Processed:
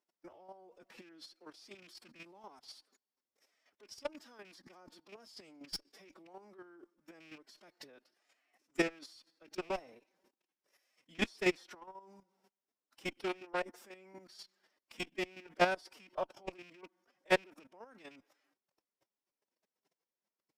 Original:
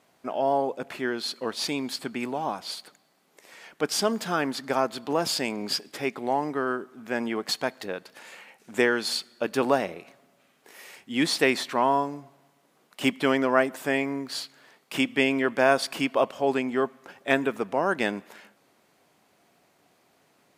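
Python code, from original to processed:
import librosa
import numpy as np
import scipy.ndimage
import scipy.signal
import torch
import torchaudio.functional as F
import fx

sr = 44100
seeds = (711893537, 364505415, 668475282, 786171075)

y = fx.rattle_buzz(x, sr, strikes_db=-33.0, level_db=-15.0)
y = scipy.signal.sosfilt(scipy.signal.butter(2, 52.0, 'highpass', fs=sr, output='sos'), y)
y = fx.peak_eq(y, sr, hz=5400.0, db=11.0, octaves=0.25)
y = fx.level_steps(y, sr, step_db=21)
y = fx.cheby_harmonics(y, sr, harmonics=(2, 3, 4, 6), levels_db=(-44, -20, -23, -20), full_scale_db=-7.0)
y = fx.chopper(y, sr, hz=4.1, depth_pct=65, duty_pct=15)
y = fx.pitch_keep_formants(y, sr, semitones=5.5)
y = fx.dynamic_eq(y, sr, hz=680.0, q=0.77, threshold_db=-45.0, ratio=4.0, max_db=4)
y = y * librosa.db_to_amplitude(-3.5)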